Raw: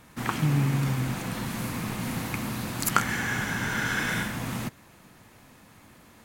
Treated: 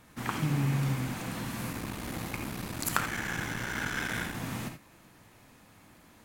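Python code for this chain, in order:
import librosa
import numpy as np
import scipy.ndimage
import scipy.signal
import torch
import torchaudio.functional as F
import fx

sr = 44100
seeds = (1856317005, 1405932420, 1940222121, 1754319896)

y = fx.cycle_switch(x, sr, every=3, mode='muted', at=(1.72, 4.35))
y = fx.rev_gated(y, sr, seeds[0], gate_ms=100, shape='rising', drr_db=6.5)
y = y * librosa.db_to_amplitude(-4.5)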